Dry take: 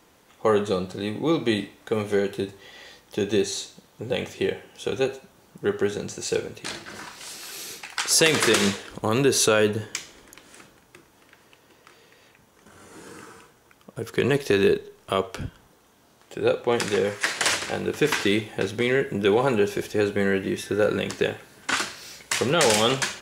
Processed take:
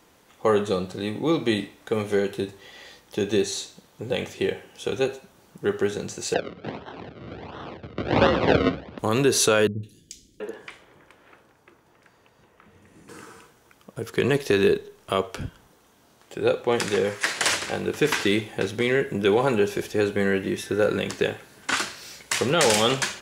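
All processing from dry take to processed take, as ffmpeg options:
-filter_complex "[0:a]asettb=1/sr,asplit=3[s0][s1][s2];[s0]atrim=end=6.344[s3];[s1]atrim=start=6.34:end=8.99,asetpts=PTS-STARTPTS,afade=t=in:d=0.004:c=qsin,afade=t=out:st=2.646:d=0.004:c=qsin,acrusher=samples=37:mix=1:aa=0.000001:lfo=1:lforange=37:lforate=1.4,lowpass=f=3900:w=0.5412,lowpass=f=3900:w=1.3066,afreqshift=64[s4];[s2]atrim=start=8.986[s5];[s3][s4]acrossfade=d=0.004:c1=hsin:c2=qsin[s6];[s6][s5]acrossfade=d=0.004:c1=qsin:c2=hsin,asettb=1/sr,asplit=3[s7][s8][s9];[s7]atrim=end=9.674[s10];[s8]atrim=start=9.67:end=13.09,asetpts=PTS-STARTPTS,afade=t=in:d=0.004:c=qsin,afade=t=out:st=3.416:d=0.004:c=qsin,highshelf=f=2700:g=-9.5,acrossover=split=310|3700[s11][s12][s13];[s13]adelay=160[s14];[s12]adelay=730[s15];[s11][s15][s14]amix=inputs=3:normalize=0,atrim=end_sample=150822[s16];[s9]atrim=start=13.086[s17];[s10][s16]acrossfade=d=0.004:c1=hsin:c2=qsin[s18];[s18][s17]acrossfade=d=0.004:c1=qsin:c2=hsin"

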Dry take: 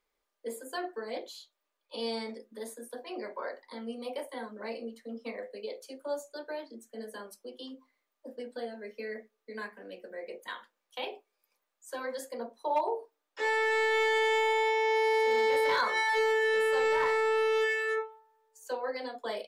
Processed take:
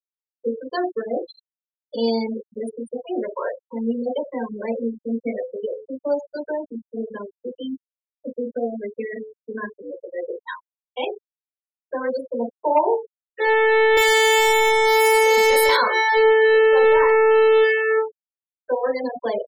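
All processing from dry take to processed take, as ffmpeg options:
-filter_complex "[0:a]asettb=1/sr,asplit=3[s0][s1][s2];[s0]atrim=end=13.974[s3];[s1]atrim=start=13.97:end=15.77,asetpts=PTS-STARTPTS,afade=t=in:d=0.004:c=qsin,afade=t=out:st=1.796:d=0.004:c=qsin,highpass=75,aemphasis=mode=production:type=riaa,acrusher=bits=6:dc=4:mix=0:aa=0.000001[s4];[s2]atrim=start=15.766[s5];[s3][s4]acrossfade=d=0.004:c1=hsin:c2=qsin[s6];[s6][s5]acrossfade=d=0.004:c1=qsin:c2=hsin,bandreject=f=108.6:t=h:w=4,bandreject=f=217.2:t=h:w=4,bandreject=f=325.8:t=h:w=4,bandreject=f=434.4:t=h:w=4,bandreject=f=543:t=h:w=4,bandreject=f=651.6:t=h:w=4,bandreject=f=760.2:t=h:w=4,bandreject=f=868.8:t=h:w=4,bandreject=f=977.4:t=h:w=4,bandreject=f=1086:t=h:w=4,bandreject=f=1194.6:t=h:w=4,bandreject=f=1303.2:t=h:w=4,bandreject=f=1411.8:t=h:w=4,bandreject=f=1520.4:t=h:w=4,bandreject=f=1629:t=h:w=4,bandreject=f=1737.6:t=h:w=4,bandreject=f=1846.2:t=h:w=4,bandreject=f=1954.8:t=h:w=4,bandreject=f=2063.4:t=h:w=4,bandreject=f=2172:t=h:w=4,bandreject=f=2280.6:t=h:w=4,bandreject=f=2389.2:t=h:w=4,bandreject=f=2497.8:t=h:w=4,bandreject=f=2606.4:t=h:w=4,bandreject=f=2715:t=h:w=4,bandreject=f=2823.6:t=h:w=4,bandreject=f=2932.2:t=h:w=4,bandreject=f=3040.8:t=h:w=4,bandreject=f=3149.4:t=h:w=4,afftfilt=real='re*gte(hypot(re,im),0.0251)':imag='im*gte(hypot(re,im),0.0251)':win_size=1024:overlap=0.75,lowshelf=f=420:g=11,volume=2.66"

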